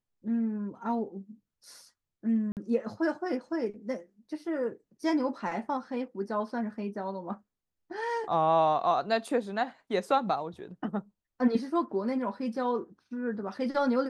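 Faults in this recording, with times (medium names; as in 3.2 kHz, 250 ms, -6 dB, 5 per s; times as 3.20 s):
2.52–2.57 s: dropout 48 ms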